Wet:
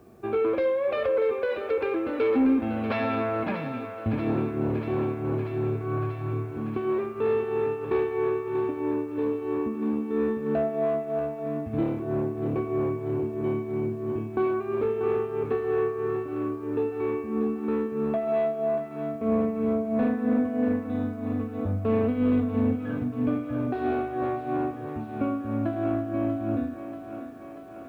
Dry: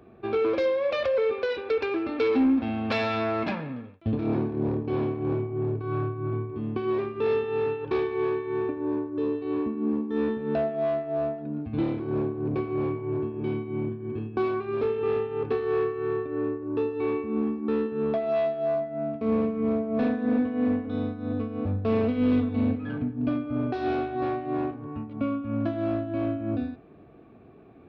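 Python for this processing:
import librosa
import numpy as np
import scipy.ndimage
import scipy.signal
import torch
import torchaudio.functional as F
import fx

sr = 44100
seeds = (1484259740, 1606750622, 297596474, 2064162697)

y = scipy.signal.sosfilt(scipy.signal.butter(2, 2300.0, 'lowpass', fs=sr, output='sos'), x)
y = fx.quant_dither(y, sr, seeds[0], bits=12, dither='triangular')
y = fx.echo_thinned(y, sr, ms=637, feedback_pct=76, hz=340.0, wet_db=-9.0)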